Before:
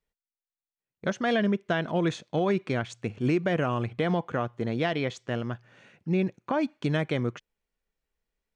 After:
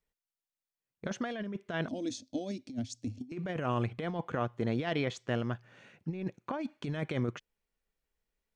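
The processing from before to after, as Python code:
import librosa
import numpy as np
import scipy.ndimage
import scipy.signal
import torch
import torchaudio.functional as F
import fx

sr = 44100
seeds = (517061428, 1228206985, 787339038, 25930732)

y = fx.curve_eq(x, sr, hz=(110.0, 160.0, 260.0, 390.0, 610.0, 1100.0, 3000.0, 5200.0, 8100.0), db=(0, -26, 13, -18, -8, -29, -11, 6, 0), at=(1.88, 3.32))
y = fx.over_compress(y, sr, threshold_db=-28.0, ratio=-0.5)
y = F.gain(torch.from_numpy(y), -4.5).numpy()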